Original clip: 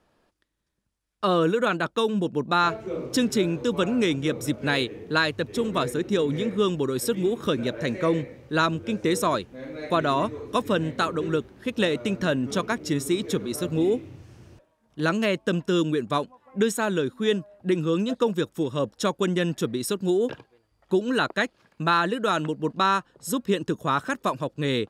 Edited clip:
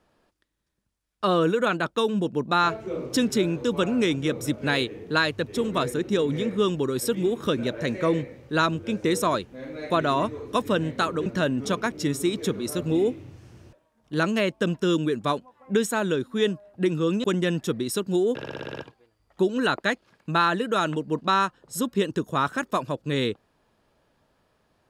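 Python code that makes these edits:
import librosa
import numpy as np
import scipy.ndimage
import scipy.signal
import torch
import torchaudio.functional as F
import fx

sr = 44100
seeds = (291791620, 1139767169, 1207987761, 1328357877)

y = fx.edit(x, sr, fx.cut(start_s=11.26, length_s=0.86),
    fx.cut(start_s=18.1, length_s=1.08),
    fx.stutter(start_s=20.29, slice_s=0.06, count=8), tone=tone)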